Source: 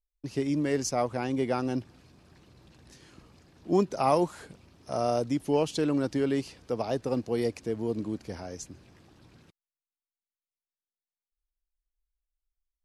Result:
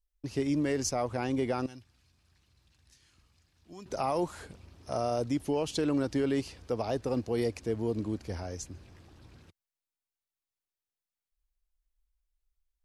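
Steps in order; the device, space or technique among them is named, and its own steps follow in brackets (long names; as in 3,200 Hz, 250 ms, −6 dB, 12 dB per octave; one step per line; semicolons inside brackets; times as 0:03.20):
car stereo with a boomy subwoofer (low shelf with overshoot 110 Hz +6 dB, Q 1.5; brickwall limiter −20 dBFS, peak gain reduction 9 dB)
0:01.66–0:03.86: guitar amp tone stack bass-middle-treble 5-5-5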